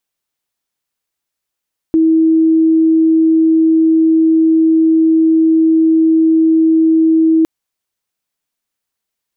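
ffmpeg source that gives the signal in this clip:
ffmpeg -f lavfi -i "aevalsrc='0.447*sin(2*PI*322*t)':duration=5.51:sample_rate=44100" out.wav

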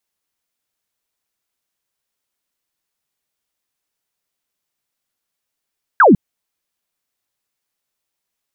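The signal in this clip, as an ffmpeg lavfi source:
ffmpeg -f lavfi -i "aevalsrc='0.562*clip(t/0.002,0,1)*clip((0.15-t)/0.002,0,1)*sin(2*PI*1700*0.15/log(160/1700)*(exp(log(160/1700)*t/0.15)-1))':duration=0.15:sample_rate=44100" out.wav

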